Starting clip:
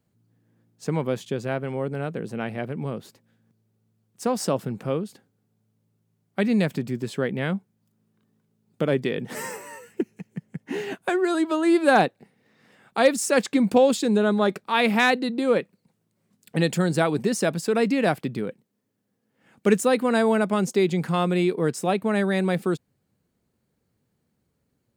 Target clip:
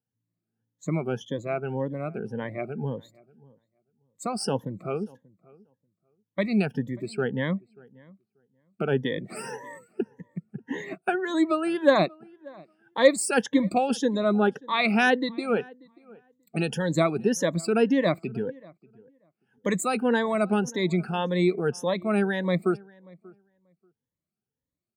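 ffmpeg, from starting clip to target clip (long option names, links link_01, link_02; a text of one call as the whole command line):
ffmpeg -i in.wav -filter_complex "[0:a]afftfilt=real='re*pow(10,15/40*sin(2*PI*(1.1*log(max(b,1)*sr/1024/100)/log(2)-(1.8)*(pts-256)/sr)))':imag='im*pow(10,15/40*sin(2*PI*(1.1*log(max(b,1)*sr/1024/100)/log(2)-(1.8)*(pts-256)/sr)))':win_size=1024:overlap=0.75,afftdn=noise_reduction=16:noise_floor=-40,asplit=2[link_01][link_02];[link_02]adelay=586,lowpass=frequency=1700:poles=1,volume=-24dB,asplit=2[link_03][link_04];[link_04]adelay=586,lowpass=frequency=1700:poles=1,volume=0.16[link_05];[link_03][link_05]amix=inputs=2:normalize=0[link_06];[link_01][link_06]amix=inputs=2:normalize=0,volume=-4.5dB" out.wav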